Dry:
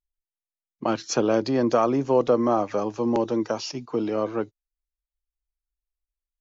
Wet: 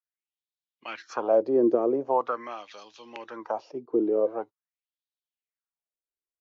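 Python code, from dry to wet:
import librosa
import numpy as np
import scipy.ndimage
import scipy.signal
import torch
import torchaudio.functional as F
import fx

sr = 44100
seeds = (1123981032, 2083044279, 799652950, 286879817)

y = fx.wah_lfo(x, sr, hz=0.44, low_hz=370.0, high_hz=3800.0, q=4.0)
y = F.gain(torch.from_numpy(y), 6.0).numpy()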